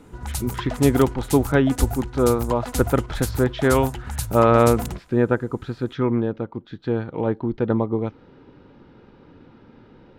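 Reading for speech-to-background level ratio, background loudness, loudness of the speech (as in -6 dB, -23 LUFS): 8.5 dB, -30.5 LUFS, -22.0 LUFS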